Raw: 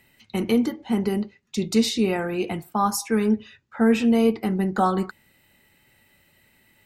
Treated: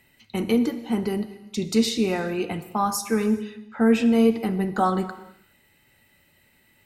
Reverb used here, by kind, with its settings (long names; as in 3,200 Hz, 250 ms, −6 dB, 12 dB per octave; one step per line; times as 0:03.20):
reverb whose tail is shaped and stops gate 450 ms falling, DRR 11 dB
level −1 dB